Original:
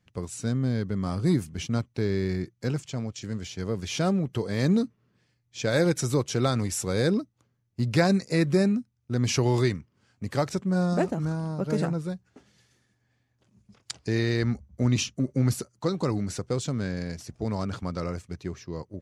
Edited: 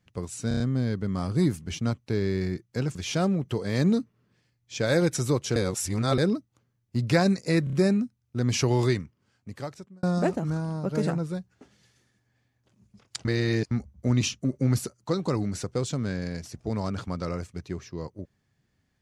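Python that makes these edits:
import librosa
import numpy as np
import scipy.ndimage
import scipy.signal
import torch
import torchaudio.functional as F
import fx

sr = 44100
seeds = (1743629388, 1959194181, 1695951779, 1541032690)

y = fx.edit(x, sr, fx.stutter(start_s=0.48, slice_s=0.03, count=5),
    fx.cut(start_s=2.83, length_s=0.96),
    fx.reverse_span(start_s=6.4, length_s=0.62),
    fx.stutter(start_s=8.48, slice_s=0.03, count=4),
    fx.fade_out_span(start_s=9.63, length_s=1.15),
    fx.reverse_span(start_s=14.0, length_s=0.46), tone=tone)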